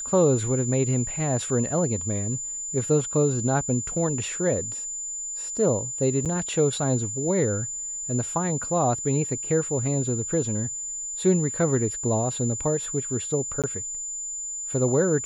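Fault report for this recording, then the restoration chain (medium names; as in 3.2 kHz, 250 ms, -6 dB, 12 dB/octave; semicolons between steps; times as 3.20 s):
whine 7.1 kHz -30 dBFS
6.25–6.26 s: dropout 7.2 ms
13.62–13.64 s: dropout 17 ms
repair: band-stop 7.1 kHz, Q 30; interpolate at 6.25 s, 7.2 ms; interpolate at 13.62 s, 17 ms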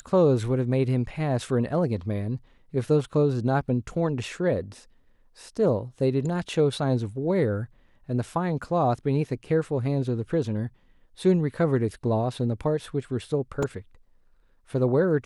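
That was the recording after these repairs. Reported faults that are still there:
nothing left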